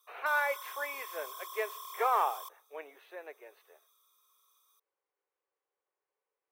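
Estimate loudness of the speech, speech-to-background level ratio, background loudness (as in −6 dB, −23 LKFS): −33.5 LKFS, 10.5 dB, −44.0 LKFS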